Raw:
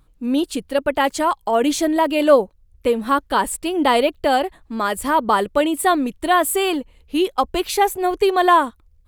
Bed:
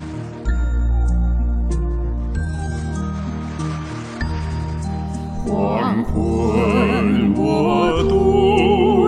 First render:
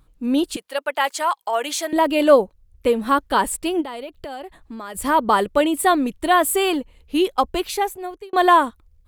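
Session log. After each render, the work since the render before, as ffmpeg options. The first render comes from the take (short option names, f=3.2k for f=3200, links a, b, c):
-filter_complex "[0:a]asettb=1/sr,asplit=3[a][b][c];[a]atrim=end=0.564[d];[b]atrim=start=0.56:end=1.93,asetpts=PTS-STARTPTS,afade=t=in:d=0.004:c=qsin,afade=t=out:st=1.366:d=0.004:c=qsin,highpass=750[e];[c]atrim=start=1.926[f];[d][e]acrossfade=d=0.004:c1=hsin:c2=qsin[g];[g][f]acrossfade=d=0.004:c1=qsin:c2=hsin,asplit=3[h][i][j];[h]afade=t=out:st=3.8:d=0.02[k];[i]acompressor=threshold=-32dB:ratio=4:attack=3.2:release=140:knee=1:detection=peak,afade=t=in:st=3.8:d=0.02,afade=t=out:st=4.94:d=0.02[l];[j]afade=t=in:st=4.94:d=0.02[m];[k][l][m]amix=inputs=3:normalize=0,asplit=2[n][o];[n]atrim=end=8.33,asetpts=PTS-STARTPTS,afade=t=out:st=7.4:d=0.93[p];[o]atrim=start=8.33,asetpts=PTS-STARTPTS,afade=t=in:d=0.004:c=hsin[q];[p][q]concat=n=2:v=0:a=1"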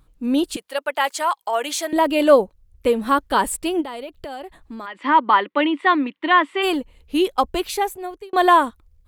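-filter_complex "[0:a]asplit=3[a][b][c];[a]afade=t=out:st=4.85:d=0.02[d];[b]highpass=f=270:w=0.5412,highpass=f=270:w=1.3066,equalizer=f=290:t=q:w=4:g=4,equalizer=f=440:t=q:w=4:g=-9,equalizer=f=670:t=q:w=4:g=-8,equalizer=f=1k:t=q:w=4:g=5,equalizer=f=2k:t=q:w=4:g=8,equalizer=f=2.9k:t=q:w=4:g=3,lowpass=f=3.6k:w=0.5412,lowpass=f=3.6k:w=1.3066,afade=t=in:st=4.85:d=0.02,afade=t=out:st=6.62:d=0.02[e];[c]afade=t=in:st=6.62:d=0.02[f];[d][e][f]amix=inputs=3:normalize=0"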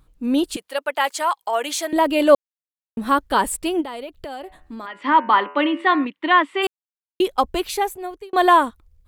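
-filter_complex "[0:a]asettb=1/sr,asplit=3[a][b][c];[a]atrim=end=4.414[d];[b]atrim=start=4.41:end=6.05,asetpts=PTS-STARTPTS,afade=t=in:d=0.004:c=qsin,afade=t=out:st=1.636:d=0.004:c=qsin,bandreject=f=83.3:t=h:w=4,bandreject=f=166.6:t=h:w=4,bandreject=f=249.9:t=h:w=4,bandreject=f=333.2:t=h:w=4,bandreject=f=416.5:t=h:w=4,bandreject=f=499.8:t=h:w=4,bandreject=f=583.1:t=h:w=4,bandreject=f=666.4:t=h:w=4,bandreject=f=749.7:t=h:w=4,bandreject=f=833:t=h:w=4,bandreject=f=916.3:t=h:w=4,bandreject=f=999.6:t=h:w=4,bandreject=f=1.0829k:t=h:w=4,bandreject=f=1.1662k:t=h:w=4,bandreject=f=1.2495k:t=h:w=4,bandreject=f=1.3328k:t=h:w=4,bandreject=f=1.4161k:t=h:w=4,bandreject=f=1.4994k:t=h:w=4,bandreject=f=1.5827k:t=h:w=4,bandreject=f=1.666k:t=h:w=4,bandreject=f=1.7493k:t=h:w=4,bandreject=f=1.8326k:t=h:w=4,bandreject=f=1.9159k:t=h:w=4,bandreject=f=1.9992k:t=h:w=4,bandreject=f=2.0825k:t=h:w=4,bandreject=f=2.1658k:t=h:w=4,bandreject=f=2.2491k:t=h:w=4,bandreject=f=2.3324k:t=h:w=4,bandreject=f=2.4157k:t=h:w=4,bandreject=f=2.499k:t=h:w=4,bandreject=f=2.5823k:t=h:w=4,bandreject=f=2.6656k:t=h:w=4,bandreject=f=2.7489k:t=h:w=4,bandreject=f=2.8322k:t=h:w=4,bandreject=f=2.9155k:t=h:w=4,bandreject=f=2.9988k:t=h:w=4[e];[c]atrim=start=6.046[f];[d][e]acrossfade=d=0.004:c1=hsin:c2=qsin[g];[g][f]acrossfade=d=0.004:c1=qsin:c2=hsin,asplit=5[h][i][j][k][l];[h]atrim=end=2.35,asetpts=PTS-STARTPTS,afade=t=out:st=2.346:d=0.004:c=hsin[m];[i]atrim=start=2.35:end=2.97,asetpts=PTS-STARTPTS,volume=0[n];[j]atrim=start=2.97:end=6.67,asetpts=PTS-STARTPTS,afade=t=in:d=0.004:c=hsin,afade=t=out:st=3.696:d=0.004:c=hsin[o];[k]atrim=start=6.67:end=7.2,asetpts=PTS-STARTPTS,volume=0[p];[l]atrim=start=7.2,asetpts=PTS-STARTPTS,afade=t=in:d=0.004:c=hsin[q];[m][n][o][p][q]concat=n=5:v=0:a=1"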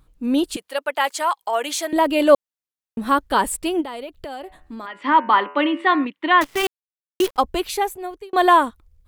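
-filter_complex "[0:a]asettb=1/sr,asplit=3[a][b][c];[a]atrim=end=6.414[d];[b]atrim=start=6.41:end=7.37,asetpts=PTS-STARTPTS,afade=t=in:d=0.004:c=qsin,afade=t=out:st=0.956:d=0.004:c=qsin,acrusher=bits=5:dc=4:mix=0:aa=0.000001[e];[c]atrim=start=7.366[f];[d][e]acrossfade=d=0.004:c1=hsin:c2=qsin[g];[g][f]acrossfade=d=0.004:c1=qsin:c2=hsin"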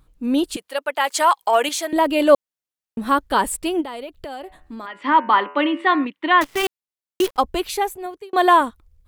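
-filter_complex "[0:a]asettb=1/sr,asplit=3[a][b][c];[a]atrim=end=1.114[d];[b]atrim=start=1.11:end=1.69,asetpts=PTS-STARTPTS,afade=t=in:d=0.004:c=qsin,afade=t=out:st=0.576:d=0.004:c=qsin,acontrast=42[e];[c]atrim=start=1.686[f];[d][e]acrossfade=d=0.004:c1=hsin:c2=qsin[g];[g][f]acrossfade=d=0.004:c1=qsin:c2=hsin,asettb=1/sr,asplit=3[h][i][j];[h]atrim=end=8.064[k];[i]atrim=start=8.06:end=8.61,asetpts=PTS-STARTPTS,afade=t=in:d=0.004:c=qsin,afade=t=out:st=0.546:d=0.004:c=qsin,highpass=100[l];[j]atrim=start=8.606[m];[k][l]acrossfade=d=0.004:c1=hsin:c2=qsin[n];[n][m]acrossfade=d=0.004:c1=qsin:c2=hsin"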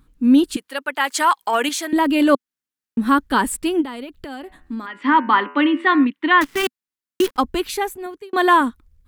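-af "equalizer=f=250:t=o:w=0.67:g=9,equalizer=f=630:t=o:w=0.67:g=-7,equalizer=f=1.6k:t=o:w=0.67:g=4"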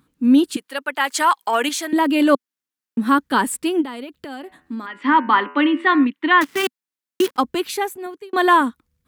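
-af "highpass=140"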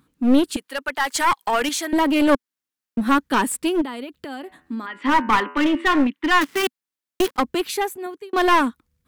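-af "aeval=exprs='clip(val(0),-1,0.119)':c=same"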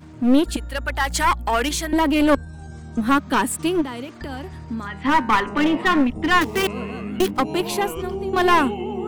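-filter_complex "[1:a]volume=-13.5dB[a];[0:a][a]amix=inputs=2:normalize=0"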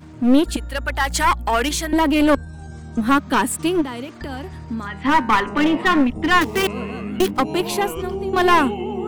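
-af "volume=1.5dB,alimiter=limit=-3dB:level=0:latency=1"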